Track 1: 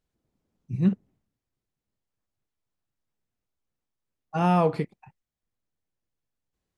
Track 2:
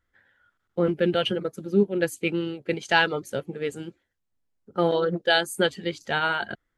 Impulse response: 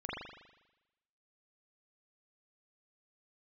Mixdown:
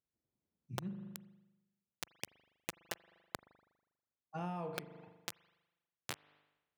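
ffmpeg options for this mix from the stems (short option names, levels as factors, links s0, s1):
-filter_complex "[0:a]volume=0.178,asplit=2[s0][s1];[s1]volume=0.376[s2];[1:a]highpass=f=110:w=0.5412,highpass=f=110:w=1.3066,acompressor=threshold=0.0251:ratio=8,acrusher=bits=3:mix=0:aa=0.000001,volume=1.26,asplit=2[s3][s4];[s4]volume=0.0631[s5];[2:a]atrim=start_sample=2205[s6];[s2][s5]amix=inputs=2:normalize=0[s7];[s7][s6]afir=irnorm=-1:irlink=0[s8];[s0][s3][s8]amix=inputs=3:normalize=0,highpass=78,acompressor=threshold=0.0126:ratio=6"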